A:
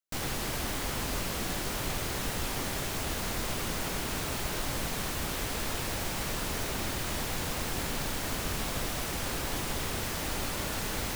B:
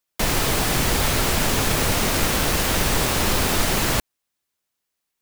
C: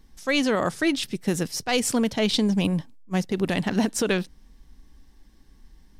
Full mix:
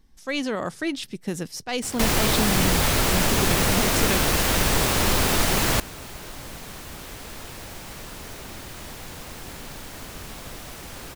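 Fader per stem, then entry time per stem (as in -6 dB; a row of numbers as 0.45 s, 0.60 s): -5.0 dB, -0.5 dB, -4.5 dB; 1.70 s, 1.80 s, 0.00 s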